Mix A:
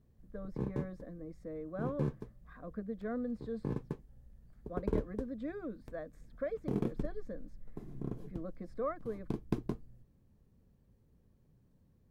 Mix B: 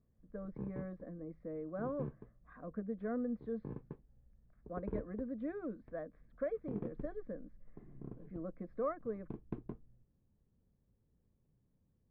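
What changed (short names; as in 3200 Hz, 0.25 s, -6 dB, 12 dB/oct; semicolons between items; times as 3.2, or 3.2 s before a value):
background -8.5 dB; master: add Bessel low-pass 1800 Hz, order 4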